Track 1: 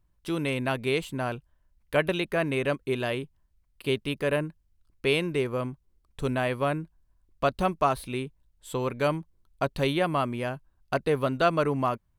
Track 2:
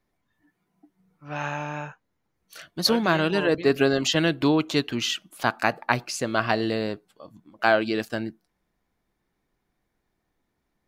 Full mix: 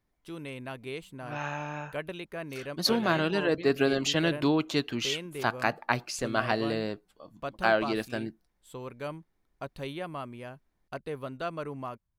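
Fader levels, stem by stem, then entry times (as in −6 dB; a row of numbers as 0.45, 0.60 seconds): −11.5, −4.5 decibels; 0.00, 0.00 seconds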